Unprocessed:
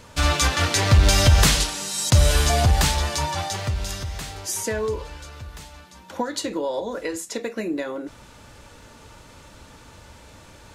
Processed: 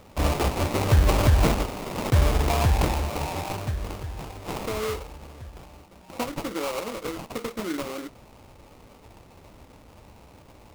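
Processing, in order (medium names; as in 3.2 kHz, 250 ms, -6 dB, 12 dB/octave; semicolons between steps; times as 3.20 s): sample-rate reducer 1.7 kHz, jitter 20%; trim -3.5 dB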